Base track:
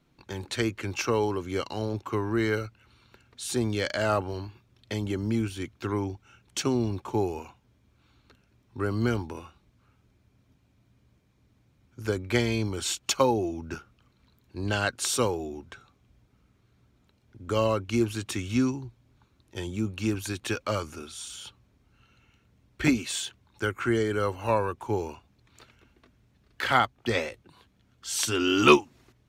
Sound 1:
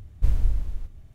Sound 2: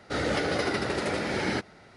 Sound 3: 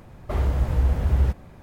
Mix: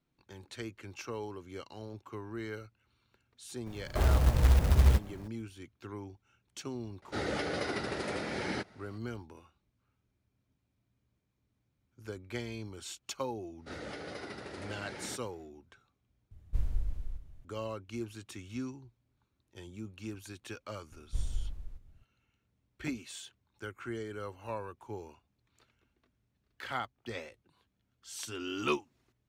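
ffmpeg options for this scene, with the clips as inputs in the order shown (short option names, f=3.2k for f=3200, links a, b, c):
-filter_complex "[2:a]asplit=2[a][b];[1:a]asplit=2[c][d];[0:a]volume=-14dB[e];[3:a]acrusher=bits=4:mode=log:mix=0:aa=0.000001[f];[c]aecho=1:1:333:0.2[g];[e]asplit=2[h][i];[h]atrim=end=16.314[j];[g]atrim=end=1.14,asetpts=PTS-STARTPTS,volume=-10.5dB[k];[i]atrim=start=17.446[l];[f]atrim=end=1.62,asetpts=PTS-STARTPTS,volume=-3dB,afade=t=in:d=0.004:c=hsin,afade=t=out:st=1.616:d=0.004:c=hsin,adelay=3660[m];[a]atrim=end=1.96,asetpts=PTS-STARTPTS,volume=-7dB,afade=t=in:d=0.004:c=hsin,afade=t=out:st=1.956:d=0.004:c=hsin,adelay=7020[n];[b]atrim=end=1.96,asetpts=PTS-STARTPTS,volume=-15.5dB,afade=t=in:d=0.1,afade=t=out:st=1.86:d=0.1,adelay=13560[o];[d]atrim=end=1.14,asetpts=PTS-STARTPTS,volume=-13dB,afade=t=in:d=0.004:c=hsin,afade=t=out:st=1.136:d=0.004:c=hsin,adelay=20910[p];[j][k]acrossfade=d=0.004:c1=hsin:c2=hsin[q];[q][l]acrossfade=d=0.004:c1=hsin:c2=hsin[r];[r][m][n][o][p]amix=inputs=5:normalize=0"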